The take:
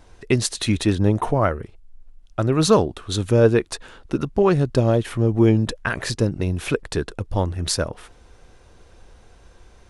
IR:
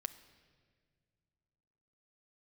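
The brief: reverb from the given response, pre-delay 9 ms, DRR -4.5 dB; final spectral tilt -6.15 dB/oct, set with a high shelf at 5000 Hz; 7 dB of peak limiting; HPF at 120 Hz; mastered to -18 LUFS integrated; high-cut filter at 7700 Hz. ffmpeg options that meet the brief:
-filter_complex "[0:a]highpass=120,lowpass=7.7k,highshelf=f=5k:g=-6,alimiter=limit=-10.5dB:level=0:latency=1,asplit=2[a][b];[1:a]atrim=start_sample=2205,adelay=9[c];[b][c]afir=irnorm=-1:irlink=0,volume=6.5dB[d];[a][d]amix=inputs=2:normalize=0,volume=-0.5dB"

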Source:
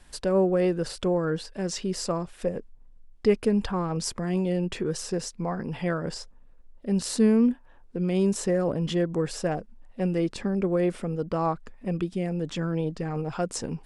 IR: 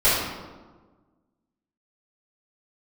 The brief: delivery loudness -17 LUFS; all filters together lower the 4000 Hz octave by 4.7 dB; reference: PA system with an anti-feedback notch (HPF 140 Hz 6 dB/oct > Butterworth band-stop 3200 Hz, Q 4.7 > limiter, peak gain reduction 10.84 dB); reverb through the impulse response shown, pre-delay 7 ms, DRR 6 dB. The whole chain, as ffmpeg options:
-filter_complex "[0:a]equalizer=f=4k:t=o:g=-5,asplit=2[a][b];[1:a]atrim=start_sample=2205,adelay=7[c];[b][c]afir=irnorm=-1:irlink=0,volume=-25.5dB[d];[a][d]amix=inputs=2:normalize=0,highpass=f=140:p=1,asuperstop=centerf=3200:order=8:qfactor=4.7,volume=14dB,alimiter=limit=-7.5dB:level=0:latency=1"

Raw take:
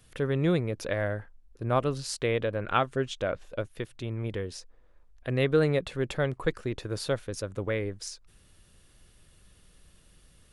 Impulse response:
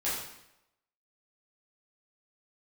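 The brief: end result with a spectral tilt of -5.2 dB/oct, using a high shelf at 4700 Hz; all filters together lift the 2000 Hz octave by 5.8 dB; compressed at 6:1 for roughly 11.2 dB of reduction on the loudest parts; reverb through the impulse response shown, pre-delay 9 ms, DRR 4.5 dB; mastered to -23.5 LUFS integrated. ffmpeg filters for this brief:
-filter_complex "[0:a]equalizer=f=2k:t=o:g=8,highshelf=f=4.7k:g=-4,acompressor=threshold=-30dB:ratio=6,asplit=2[a][b];[1:a]atrim=start_sample=2205,adelay=9[c];[b][c]afir=irnorm=-1:irlink=0,volume=-11.5dB[d];[a][d]amix=inputs=2:normalize=0,volume=11dB"

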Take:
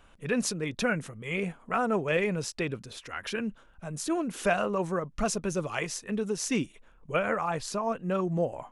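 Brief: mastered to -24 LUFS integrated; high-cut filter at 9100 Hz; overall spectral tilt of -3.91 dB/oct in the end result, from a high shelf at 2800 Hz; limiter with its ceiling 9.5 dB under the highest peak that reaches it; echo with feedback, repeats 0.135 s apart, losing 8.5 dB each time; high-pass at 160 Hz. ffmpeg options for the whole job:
-af "highpass=160,lowpass=9.1k,highshelf=f=2.8k:g=4,alimiter=limit=-21dB:level=0:latency=1,aecho=1:1:135|270|405|540:0.376|0.143|0.0543|0.0206,volume=8dB"

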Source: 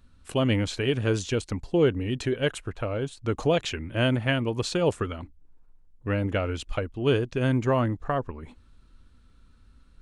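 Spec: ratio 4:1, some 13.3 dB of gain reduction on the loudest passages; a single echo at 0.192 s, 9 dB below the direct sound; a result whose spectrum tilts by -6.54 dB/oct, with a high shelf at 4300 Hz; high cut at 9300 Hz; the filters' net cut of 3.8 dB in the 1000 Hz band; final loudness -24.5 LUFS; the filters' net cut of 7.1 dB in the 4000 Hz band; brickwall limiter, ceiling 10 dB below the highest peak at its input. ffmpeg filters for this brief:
-af "lowpass=9.3k,equalizer=f=1k:t=o:g=-4.5,equalizer=f=4k:t=o:g=-7,highshelf=f=4.3k:g=-6,acompressor=threshold=-34dB:ratio=4,alimiter=level_in=7dB:limit=-24dB:level=0:latency=1,volume=-7dB,aecho=1:1:192:0.355,volume=16dB"

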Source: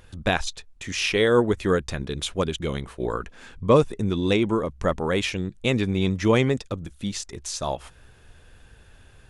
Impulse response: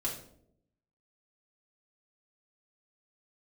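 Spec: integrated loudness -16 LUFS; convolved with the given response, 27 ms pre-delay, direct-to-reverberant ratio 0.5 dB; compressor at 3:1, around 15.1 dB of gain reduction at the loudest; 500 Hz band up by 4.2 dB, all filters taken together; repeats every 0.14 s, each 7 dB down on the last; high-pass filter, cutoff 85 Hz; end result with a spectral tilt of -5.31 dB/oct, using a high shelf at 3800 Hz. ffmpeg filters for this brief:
-filter_complex "[0:a]highpass=85,equalizer=f=500:t=o:g=5,highshelf=f=3.8k:g=-7,acompressor=threshold=-30dB:ratio=3,aecho=1:1:140|280|420|560|700:0.447|0.201|0.0905|0.0407|0.0183,asplit=2[a][b];[1:a]atrim=start_sample=2205,adelay=27[c];[b][c]afir=irnorm=-1:irlink=0,volume=-3.5dB[d];[a][d]amix=inputs=2:normalize=0,volume=12dB"

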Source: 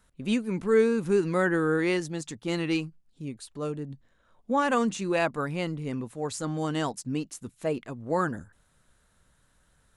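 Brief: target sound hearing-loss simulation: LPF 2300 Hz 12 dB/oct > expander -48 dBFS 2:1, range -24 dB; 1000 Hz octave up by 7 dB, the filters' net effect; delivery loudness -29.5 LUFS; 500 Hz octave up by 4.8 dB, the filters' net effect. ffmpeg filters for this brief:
-af "lowpass=2.3k,equalizer=f=500:t=o:g=4,equalizer=f=1k:t=o:g=8,agate=range=-24dB:threshold=-48dB:ratio=2,volume=-5dB"

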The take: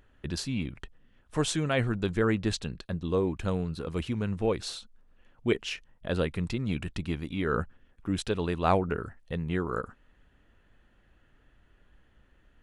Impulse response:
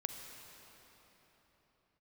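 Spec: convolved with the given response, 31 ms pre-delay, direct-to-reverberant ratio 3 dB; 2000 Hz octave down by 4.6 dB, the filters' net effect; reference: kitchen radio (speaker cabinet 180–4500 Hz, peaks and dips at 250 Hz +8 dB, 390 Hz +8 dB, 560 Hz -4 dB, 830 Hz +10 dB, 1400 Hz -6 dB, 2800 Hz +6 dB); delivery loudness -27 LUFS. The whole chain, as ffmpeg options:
-filter_complex "[0:a]equalizer=f=2k:t=o:g=-6.5,asplit=2[a][b];[1:a]atrim=start_sample=2205,adelay=31[c];[b][c]afir=irnorm=-1:irlink=0,volume=-3dB[d];[a][d]amix=inputs=2:normalize=0,highpass=180,equalizer=f=250:t=q:w=4:g=8,equalizer=f=390:t=q:w=4:g=8,equalizer=f=560:t=q:w=4:g=-4,equalizer=f=830:t=q:w=4:g=10,equalizer=f=1.4k:t=q:w=4:g=-6,equalizer=f=2.8k:t=q:w=4:g=6,lowpass=f=4.5k:w=0.5412,lowpass=f=4.5k:w=1.3066"

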